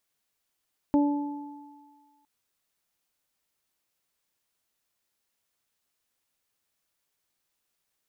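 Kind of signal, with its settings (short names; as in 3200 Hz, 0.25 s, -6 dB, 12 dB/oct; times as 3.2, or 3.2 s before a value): additive tone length 1.31 s, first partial 289 Hz, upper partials -11/-12 dB, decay 1.45 s, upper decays 0.84/2.15 s, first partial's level -17.5 dB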